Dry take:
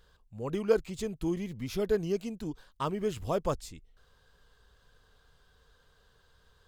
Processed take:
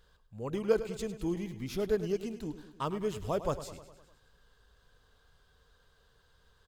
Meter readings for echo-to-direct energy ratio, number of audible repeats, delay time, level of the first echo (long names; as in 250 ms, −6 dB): −11.0 dB, 5, 102 ms, −13.0 dB